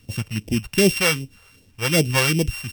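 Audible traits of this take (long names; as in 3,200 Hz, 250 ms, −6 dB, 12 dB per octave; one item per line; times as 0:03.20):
a buzz of ramps at a fixed pitch in blocks of 16 samples
phaser sweep stages 2, 2.6 Hz, lowest notch 260–1,300 Hz
a quantiser's noise floor 12 bits, dither none
MP3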